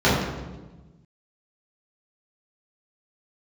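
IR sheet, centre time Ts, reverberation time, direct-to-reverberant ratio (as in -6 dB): 72 ms, 1.2 s, -10.0 dB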